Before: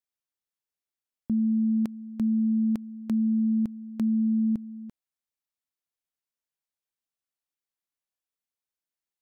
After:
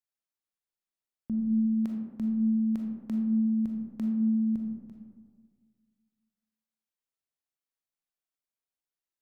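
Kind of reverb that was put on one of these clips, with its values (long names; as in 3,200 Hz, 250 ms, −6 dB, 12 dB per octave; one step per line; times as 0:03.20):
comb and all-pass reverb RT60 1.7 s, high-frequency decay 0.3×, pre-delay 0 ms, DRR 1 dB
level −5.5 dB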